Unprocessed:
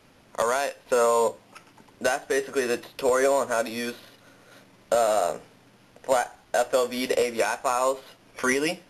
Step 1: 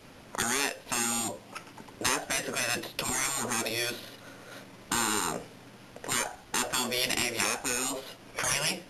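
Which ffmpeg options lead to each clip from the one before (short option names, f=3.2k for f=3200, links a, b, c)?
-af "afftfilt=real='re*lt(hypot(re,im),0.112)':imag='im*lt(hypot(re,im),0.112)':win_size=1024:overlap=0.75,adynamicequalizer=threshold=0.00316:dfrequency=1200:dqfactor=0.81:tfrequency=1200:tqfactor=0.81:attack=5:release=100:ratio=0.375:range=2:mode=cutabove:tftype=bell,volume=5.5dB"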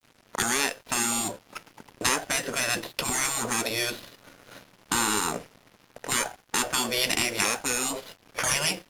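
-af "aeval=exprs='sgn(val(0))*max(abs(val(0))-0.00422,0)':c=same,volume=4dB"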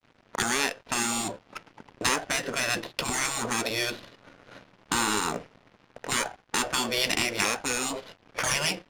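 -af "adynamicsmooth=sensitivity=7:basefreq=3.7k"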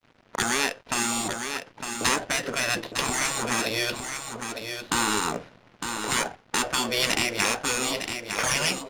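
-af "aecho=1:1:907:0.447,volume=1.5dB"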